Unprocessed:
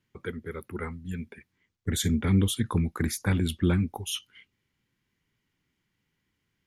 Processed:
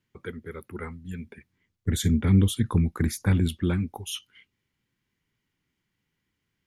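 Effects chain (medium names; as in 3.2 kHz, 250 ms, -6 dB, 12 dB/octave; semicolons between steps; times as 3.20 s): 1.24–3.49 s: bass shelf 280 Hz +6.5 dB; trim -1.5 dB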